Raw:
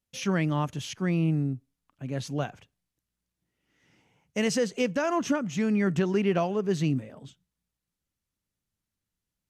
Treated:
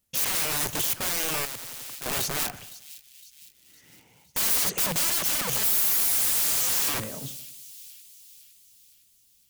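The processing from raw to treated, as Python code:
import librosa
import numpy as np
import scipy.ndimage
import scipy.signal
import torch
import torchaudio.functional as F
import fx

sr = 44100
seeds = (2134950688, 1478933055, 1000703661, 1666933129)

y = fx.low_shelf(x, sr, hz=390.0, db=-2.0, at=(5.86, 6.84))
y = fx.spec_paint(y, sr, seeds[0], shape='fall', start_s=5.63, length_s=1.26, low_hz=690.0, high_hz=2300.0, level_db=-27.0)
y = (np.mod(10.0 ** (33.0 / 20.0) * y + 1.0, 2.0) - 1.0) / 10.0 ** (33.0 / 20.0)
y = fx.leveller(y, sr, passes=1, at=(4.4, 5.1))
y = fx.high_shelf(y, sr, hz=7600.0, db=11.5)
y = fx.echo_split(y, sr, split_hz=2700.0, low_ms=87, high_ms=510, feedback_pct=52, wet_db=-16)
y = fx.spectral_comp(y, sr, ratio=4.0, at=(1.45, 2.06))
y = y * librosa.db_to_amplitude(6.5)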